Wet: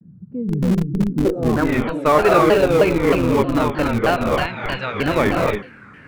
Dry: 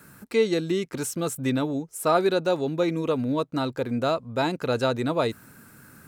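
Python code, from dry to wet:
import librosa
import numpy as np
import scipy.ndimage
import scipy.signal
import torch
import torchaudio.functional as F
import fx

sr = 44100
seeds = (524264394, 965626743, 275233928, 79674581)

p1 = fx.peak_eq(x, sr, hz=350.0, db=-14.0, octaves=2.5, at=(4.33, 4.94))
p2 = p1 + fx.echo_single(p1, sr, ms=104, db=-18.5, dry=0)
p3 = fx.rev_gated(p2, sr, seeds[0], gate_ms=310, shape='rising', drr_db=0.0)
p4 = fx.filter_sweep_lowpass(p3, sr, from_hz=170.0, to_hz=2200.0, start_s=1.07, end_s=1.73, q=3.0)
p5 = fx.schmitt(p4, sr, flips_db=-18.5)
p6 = p4 + (p5 * 10.0 ** (-6.5 / 20.0))
p7 = fx.vibrato_shape(p6, sr, shape='saw_down', rate_hz=3.2, depth_cents=250.0)
y = p7 * 10.0 ** (3.0 / 20.0)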